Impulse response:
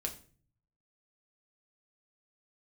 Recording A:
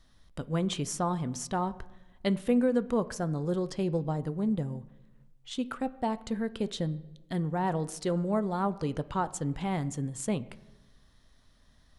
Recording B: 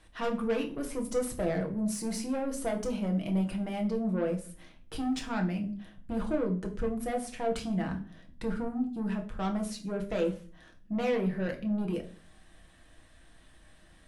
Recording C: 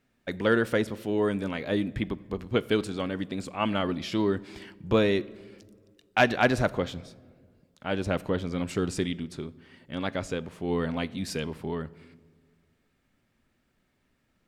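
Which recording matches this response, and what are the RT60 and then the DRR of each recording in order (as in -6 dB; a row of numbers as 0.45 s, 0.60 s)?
B; 1.1 s, 0.45 s, 1.8 s; 13.0 dB, 1.5 dB, 16.5 dB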